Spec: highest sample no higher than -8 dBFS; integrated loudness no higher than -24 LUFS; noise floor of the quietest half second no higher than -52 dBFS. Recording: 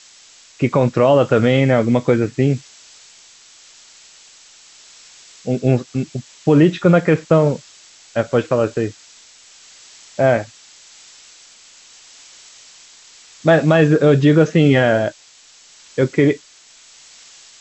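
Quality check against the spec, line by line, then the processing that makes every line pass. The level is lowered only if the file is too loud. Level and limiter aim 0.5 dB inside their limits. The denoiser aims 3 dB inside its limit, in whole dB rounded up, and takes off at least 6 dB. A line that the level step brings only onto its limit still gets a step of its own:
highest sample -3.0 dBFS: fail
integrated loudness -16.0 LUFS: fail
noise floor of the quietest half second -47 dBFS: fail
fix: trim -8.5 dB

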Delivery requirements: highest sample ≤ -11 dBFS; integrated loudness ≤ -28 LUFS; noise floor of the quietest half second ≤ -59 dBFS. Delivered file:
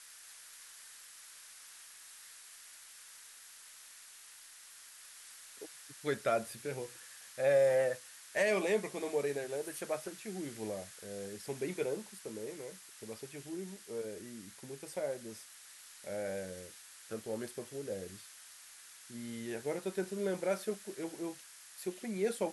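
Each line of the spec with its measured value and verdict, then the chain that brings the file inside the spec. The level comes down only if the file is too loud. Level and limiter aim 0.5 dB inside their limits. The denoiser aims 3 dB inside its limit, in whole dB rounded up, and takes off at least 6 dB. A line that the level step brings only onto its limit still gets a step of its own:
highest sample -19.0 dBFS: pass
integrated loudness -38.0 LUFS: pass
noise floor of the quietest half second -55 dBFS: fail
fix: noise reduction 7 dB, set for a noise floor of -55 dBFS

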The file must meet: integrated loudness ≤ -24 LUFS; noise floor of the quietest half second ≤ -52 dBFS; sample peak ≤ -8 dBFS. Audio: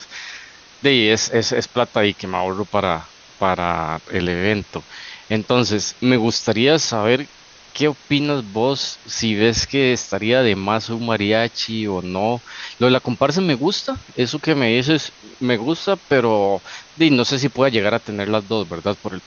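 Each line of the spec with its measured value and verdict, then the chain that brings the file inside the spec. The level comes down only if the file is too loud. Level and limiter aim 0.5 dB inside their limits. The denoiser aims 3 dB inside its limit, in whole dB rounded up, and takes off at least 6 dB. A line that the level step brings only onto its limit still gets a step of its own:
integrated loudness -19.0 LUFS: fail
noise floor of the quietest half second -45 dBFS: fail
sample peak -2.0 dBFS: fail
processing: noise reduction 6 dB, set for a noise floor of -45 dBFS; trim -5.5 dB; peak limiter -8.5 dBFS

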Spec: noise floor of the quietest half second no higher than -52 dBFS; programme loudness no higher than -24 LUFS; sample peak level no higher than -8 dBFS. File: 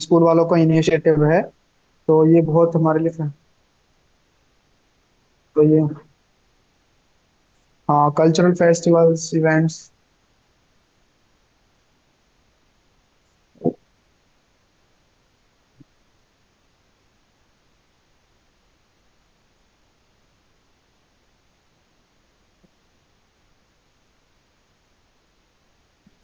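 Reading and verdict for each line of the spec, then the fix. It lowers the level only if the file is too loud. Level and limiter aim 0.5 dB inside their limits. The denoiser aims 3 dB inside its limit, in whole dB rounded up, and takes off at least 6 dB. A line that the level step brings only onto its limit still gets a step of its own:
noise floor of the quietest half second -62 dBFS: pass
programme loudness -17.0 LUFS: fail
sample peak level -4.5 dBFS: fail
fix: trim -7.5 dB

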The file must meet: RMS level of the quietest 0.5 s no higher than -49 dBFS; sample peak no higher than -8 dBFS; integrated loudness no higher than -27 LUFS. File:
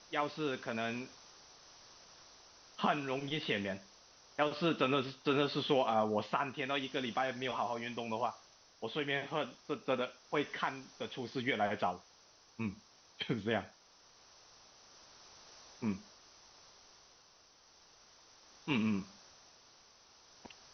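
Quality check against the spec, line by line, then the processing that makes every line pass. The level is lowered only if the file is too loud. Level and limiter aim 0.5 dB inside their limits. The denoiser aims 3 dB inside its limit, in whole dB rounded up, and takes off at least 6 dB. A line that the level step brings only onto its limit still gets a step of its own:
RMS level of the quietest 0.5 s -64 dBFS: pass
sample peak -17.5 dBFS: pass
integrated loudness -36.5 LUFS: pass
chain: none needed

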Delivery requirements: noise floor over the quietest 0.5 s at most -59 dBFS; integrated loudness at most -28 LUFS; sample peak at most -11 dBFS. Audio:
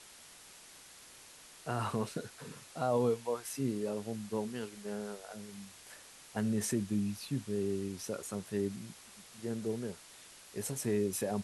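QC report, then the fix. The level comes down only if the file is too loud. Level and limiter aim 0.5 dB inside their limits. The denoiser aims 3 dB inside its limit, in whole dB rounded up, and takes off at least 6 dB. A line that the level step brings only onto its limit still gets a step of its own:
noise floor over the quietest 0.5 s -55 dBFS: fail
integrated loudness -36.5 LUFS: pass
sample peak -19.5 dBFS: pass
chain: noise reduction 7 dB, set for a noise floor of -55 dBFS

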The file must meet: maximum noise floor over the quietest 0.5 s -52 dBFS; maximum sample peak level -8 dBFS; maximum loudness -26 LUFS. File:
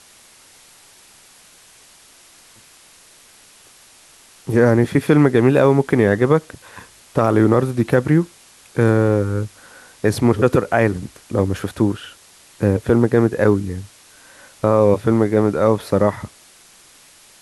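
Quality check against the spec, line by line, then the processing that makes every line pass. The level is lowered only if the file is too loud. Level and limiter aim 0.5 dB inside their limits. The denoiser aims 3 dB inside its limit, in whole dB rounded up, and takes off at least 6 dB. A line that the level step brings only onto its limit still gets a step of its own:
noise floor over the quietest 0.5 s -48 dBFS: fail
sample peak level -2.0 dBFS: fail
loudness -17.0 LUFS: fail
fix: trim -9.5 dB

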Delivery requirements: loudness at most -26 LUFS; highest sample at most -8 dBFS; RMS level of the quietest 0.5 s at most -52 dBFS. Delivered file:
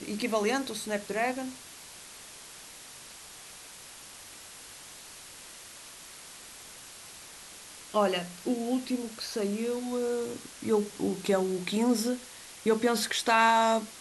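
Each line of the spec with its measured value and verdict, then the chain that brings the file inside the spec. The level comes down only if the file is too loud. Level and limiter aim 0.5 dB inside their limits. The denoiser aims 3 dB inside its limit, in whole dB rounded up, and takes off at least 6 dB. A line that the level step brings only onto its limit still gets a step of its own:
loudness -29.0 LUFS: pass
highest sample -11.0 dBFS: pass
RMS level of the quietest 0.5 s -48 dBFS: fail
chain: noise reduction 7 dB, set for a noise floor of -48 dBFS

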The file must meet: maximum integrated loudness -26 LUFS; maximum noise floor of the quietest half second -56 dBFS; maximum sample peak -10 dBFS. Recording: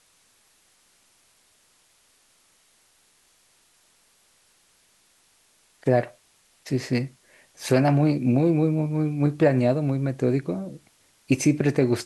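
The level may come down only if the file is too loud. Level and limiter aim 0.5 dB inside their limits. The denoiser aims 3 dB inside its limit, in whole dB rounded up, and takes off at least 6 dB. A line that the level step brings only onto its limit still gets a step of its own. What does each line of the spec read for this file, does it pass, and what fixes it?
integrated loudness -23.5 LUFS: fail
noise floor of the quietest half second -62 dBFS: pass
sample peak -7.0 dBFS: fail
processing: trim -3 dB; peak limiter -10.5 dBFS

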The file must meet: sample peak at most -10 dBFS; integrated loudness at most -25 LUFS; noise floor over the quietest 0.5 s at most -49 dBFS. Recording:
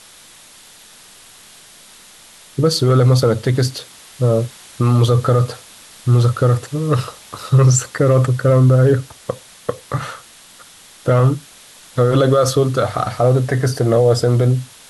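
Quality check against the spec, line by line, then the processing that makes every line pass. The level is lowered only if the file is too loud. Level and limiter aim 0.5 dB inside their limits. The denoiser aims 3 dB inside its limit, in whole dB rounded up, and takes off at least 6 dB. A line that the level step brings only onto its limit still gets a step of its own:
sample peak -4.5 dBFS: fail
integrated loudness -16.0 LUFS: fail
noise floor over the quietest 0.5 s -44 dBFS: fail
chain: trim -9.5 dB

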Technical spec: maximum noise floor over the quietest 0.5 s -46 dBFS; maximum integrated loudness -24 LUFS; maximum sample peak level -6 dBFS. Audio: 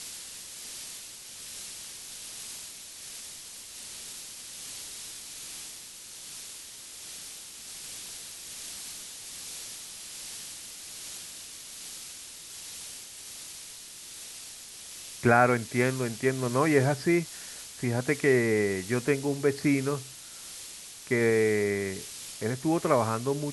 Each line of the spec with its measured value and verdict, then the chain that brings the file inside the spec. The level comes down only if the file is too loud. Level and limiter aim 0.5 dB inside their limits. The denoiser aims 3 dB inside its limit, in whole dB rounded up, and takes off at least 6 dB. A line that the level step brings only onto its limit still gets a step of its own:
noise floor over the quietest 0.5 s -45 dBFS: fail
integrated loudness -31.0 LUFS: pass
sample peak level -7.5 dBFS: pass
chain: noise reduction 6 dB, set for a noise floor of -45 dBFS

